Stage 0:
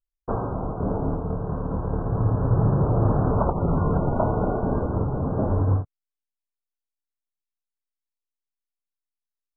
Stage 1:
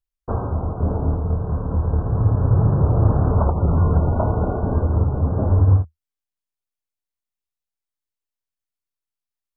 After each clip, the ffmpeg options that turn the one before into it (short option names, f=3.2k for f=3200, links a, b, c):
-af "equalizer=f=79:w=2.2:g=13"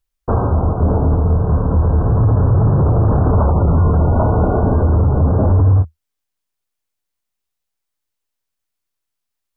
-af "alimiter=limit=-15.5dB:level=0:latency=1:release=19,volume=9dB"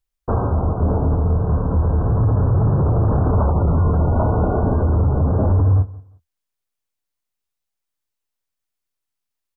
-af "aecho=1:1:176|352:0.0891|0.0223,volume=-3.5dB"